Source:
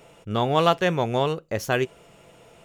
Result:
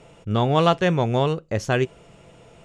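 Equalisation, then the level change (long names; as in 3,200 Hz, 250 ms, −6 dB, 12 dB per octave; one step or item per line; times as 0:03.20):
low-pass filter 9,100 Hz 24 dB per octave
low-shelf EQ 230 Hz +8 dB
0.0 dB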